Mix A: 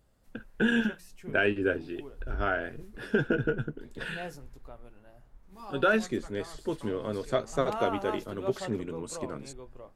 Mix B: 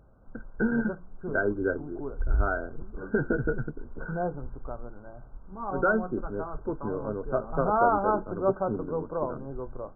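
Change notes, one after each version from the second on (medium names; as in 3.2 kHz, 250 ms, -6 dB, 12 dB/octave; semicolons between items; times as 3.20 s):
background +10.0 dB; master: add brick-wall FIR low-pass 1.6 kHz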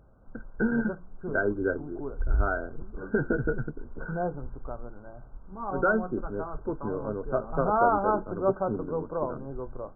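no change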